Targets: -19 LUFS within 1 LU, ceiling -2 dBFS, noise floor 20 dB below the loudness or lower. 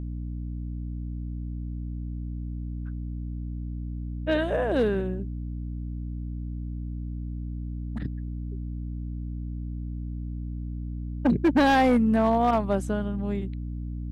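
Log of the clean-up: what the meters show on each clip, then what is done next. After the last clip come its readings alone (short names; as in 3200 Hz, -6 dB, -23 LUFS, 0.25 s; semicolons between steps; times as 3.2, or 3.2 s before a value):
clipped 0.7%; flat tops at -15.5 dBFS; hum 60 Hz; harmonics up to 300 Hz; hum level -30 dBFS; loudness -29.0 LUFS; peak -15.5 dBFS; loudness target -19.0 LUFS
-> clip repair -15.5 dBFS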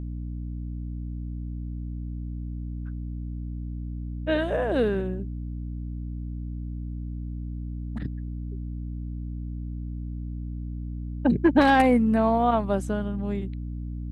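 clipped 0.0%; hum 60 Hz; harmonics up to 300 Hz; hum level -30 dBFS
-> notches 60/120/180/240/300 Hz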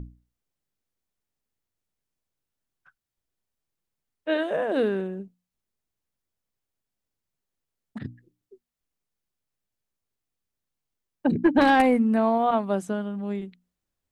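hum none; loudness -24.0 LUFS; peak -7.5 dBFS; loudness target -19.0 LUFS
-> gain +5 dB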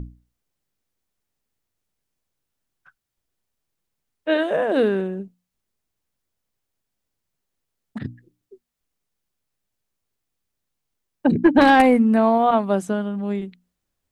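loudness -19.0 LUFS; peak -2.5 dBFS; noise floor -81 dBFS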